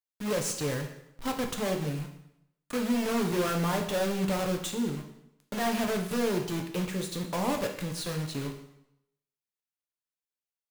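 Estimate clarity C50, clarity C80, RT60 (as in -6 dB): 8.0 dB, 11.0 dB, 0.80 s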